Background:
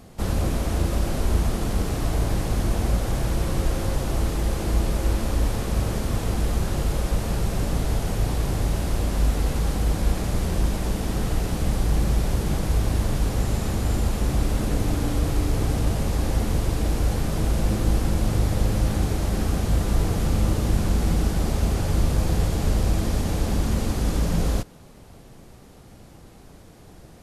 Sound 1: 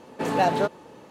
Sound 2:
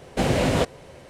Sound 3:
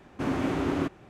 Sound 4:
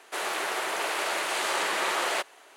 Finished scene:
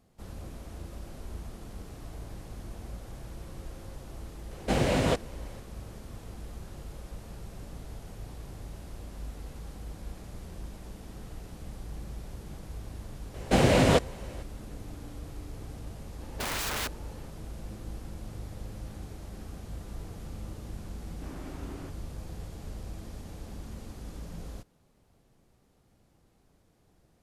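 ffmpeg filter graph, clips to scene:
ffmpeg -i bed.wav -i cue0.wav -i cue1.wav -i cue2.wav -filter_complex "[2:a]asplit=2[link_01][link_02];[0:a]volume=-19dB[link_03];[1:a]aeval=exprs='(mod(15*val(0)+1,2)-1)/15':channel_layout=same[link_04];[link_01]atrim=end=1.09,asetpts=PTS-STARTPTS,volume=-4.5dB,afade=type=in:duration=0.004:curve=hsin,afade=type=out:start_time=1.086:duration=0.004:curve=hsin,adelay=4510[link_05];[link_02]atrim=end=1.09,asetpts=PTS-STARTPTS,afade=type=in:duration=0.004:curve=hsin,afade=type=out:start_time=1.086:duration=0.004:curve=hsin,adelay=13340[link_06];[link_04]atrim=end=1.1,asetpts=PTS-STARTPTS,volume=-4.5dB,afade=type=in:duration=0.004:curve=hsin,afade=type=out:start_time=1.096:duration=0.004:curve=hsin,adelay=714420S[link_07];[3:a]atrim=end=1.09,asetpts=PTS-STARTPTS,volume=-17dB,afade=type=in:duration=0.004:curve=hsin,afade=type=out:start_time=1.086:duration=0.004:curve=hsin,adelay=21020[link_08];[link_03][link_05][link_06][link_07][link_08]amix=inputs=5:normalize=0" out.wav

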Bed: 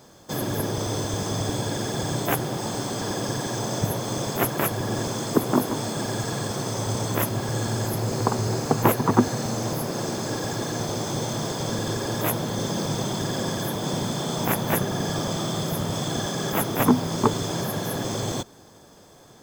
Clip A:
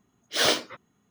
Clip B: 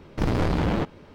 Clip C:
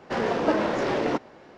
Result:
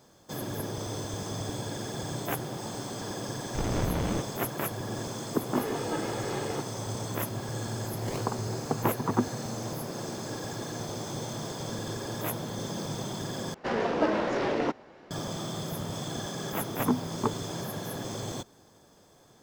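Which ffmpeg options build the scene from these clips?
ffmpeg -i bed.wav -i cue0.wav -i cue1.wav -i cue2.wav -filter_complex "[3:a]asplit=2[link_01][link_02];[0:a]volume=-8dB[link_03];[link_01]aecho=1:1:2.4:0.65[link_04];[1:a]acrusher=samples=27:mix=1:aa=0.000001:lfo=1:lforange=16.2:lforate=3.1[link_05];[link_03]asplit=2[link_06][link_07];[link_06]atrim=end=13.544[link_08];[link_02]atrim=end=1.57,asetpts=PTS-STARTPTS,volume=-3dB[link_09];[link_07]atrim=start=15.106[link_10];[2:a]atrim=end=1.14,asetpts=PTS-STARTPTS,volume=-7dB,afade=type=in:duration=0.004:curve=hsin,afade=type=out:start_time=1.136:duration=0.004:curve=hsin,adelay=148617S[link_11];[link_04]atrim=end=1.57,asetpts=PTS-STARTPTS,volume=-11dB,afade=type=in:duration=0.004:curve=hsin,afade=type=out:start_time=1.566:duration=0.004:curve=hsin,adelay=5440[link_12];[link_05]atrim=end=1.1,asetpts=PTS-STARTPTS,volume=-15.5dB,afade=type=in:duration=0.004:curve=hsin,afade=type=out:start_time=1.096:duration=0.004:curve=hsin,adelay=7670[link_13];[link_08][link_09]acrossfade=duration=0.004:curve1=hsin:curve2=hsin[link_14];[link_14][link_10]acrossfade=duration=0.004:curve1=hsin:curve2=hsin[link_15];[link_15][link_11][link_12][link_13]amix=inputs=4:normalize=0" out.wav

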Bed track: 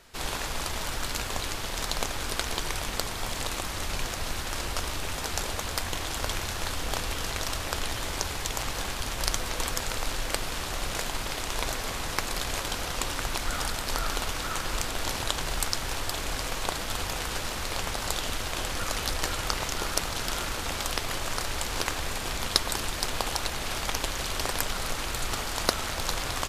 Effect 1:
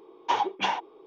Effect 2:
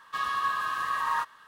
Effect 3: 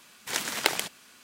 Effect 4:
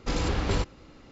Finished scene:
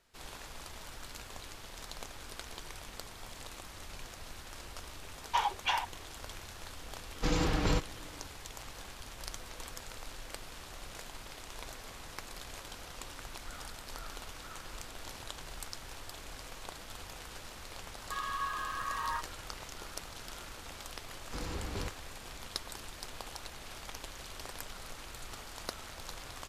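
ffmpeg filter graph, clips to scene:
ffmpeg -i bed.wav -i cue0.wav -i cue1.wav -i cue2.wav -i cue3.wav -filter_complex "[4:a]asplit=2[link_01][link_02];[0:a]volume=-15dB[link_03];[1:a]highpass=870[link_04];[link_01]aecho=1:1:6.4:0.54[link_05];[link_04]atrim=end=1.06,asetpts=PTS-STARTPTS,volume=-2.5dB,afade=type=in:duration=0.004:curve=hsin,afade=type=out:start_time=1.056:duration=0.004:curve=hsin,adelay=222705S[link_06];[link_05]atrim=end=1.11,asetpts=PTS-STARTPTS,volume=-3dB,afade=type=in:duration=0.004:curve=hsin,afade=type=out:start_time=1.106:duration=0.004:curve=hsin,adelay=7160[link_07];[2:a]atrim=end=1.47,asetpts=PTS-STARTPTS,volume=-8dB,afade=type=in:duration=0.004:curve=hsin,afade=type=out:start_time=1.466:duration=0.004:curve=hsin,adelay=17970[link_08];[link_02]atrim=end=1.11,asetpts=PTS-STARTPTS,volume=-12.5dB,afade=type=in:duration=0.004:curve=hsin,afade=type=out:start_time=1.106:duration=0.004:curve=hsin,adelay=21260[link_09];[link_03][link_06][link_07][link_08][link_09]amix=inputs=5:normalize=0" out.wav

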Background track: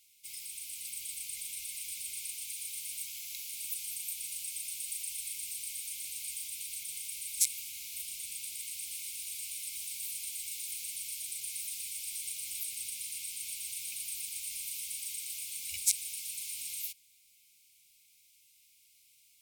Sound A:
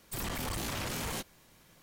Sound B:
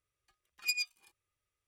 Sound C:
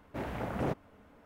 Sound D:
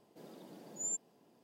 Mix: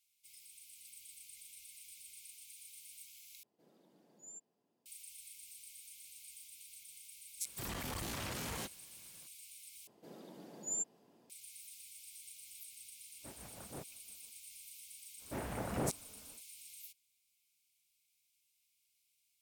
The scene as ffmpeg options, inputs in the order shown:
ffmpeg -i bed.wav -i cue0.wav -i cue1.wav -i cue2.wav -i cue3.wav -filter_complex "[4:a]asplit=2[link_01][link_02];[3:a]asplit=2[link_03][link_04];[0:a]volume=-14dB[link_05];[1:a]highpass=42[link_06];[link_03]tremolo=f=5.9:d=0.73[link_07];[link_05]asplit=3[link_08][link_09][link_10];[link_08]atrim=end=3.434[link_11];[link_01]atrim=end=1.43,asetpts=PTS-STARTPTS,volume=-15dB[link_12];[link_09]atrim=start=4.856:end=9.874[link_13];[link_02]atrim=end=1.43[link_14];[link_10]atrim=start=11.296[link_15];[link_06]atrim=end=1.82,asetpts=PTS-STARTPTS,volume=-5.5dB,afade=type=in:duration=0.004:curve=hsin,afade=type=out:start_time=1.816:duration=0.004:curve=hsin,adelay=7450[link_16];[link_07]atrim=end=1.25,asetpts=PTS-STARTPTS,volume=-14.5dB,afade=type=in:duration=0.1,afade=type=out:start_time=1.15:duration=0.1,adelay=13100[link_17];[link_04]atrim=end=1.25,asetpts=PTS-STARTPTS,volume=-4dB,afade=type=in:duration=0.1,afade=type=out:start_time=1.15:duration=0.1,adelay=15170[link_18];[link_11][link_12]acrossfade=duration=0.004:curve1=hsin:curve2=hsin[link_19];[link_19][link_13]acrossfade=duration=0.004:curve1=hsin:curve2=hsin[link_20];[link_20][link_14]acrossfade=duration=0.004:curve1=hsin:curve2=hsin[link_21];[link_21][link_15]acrossfade=duration=0.004:curve1=hsin:curve2=hsin[link_22];[link_22][link_16][link_17][link_18]amix=inputs=4:normalize=0" out.wav

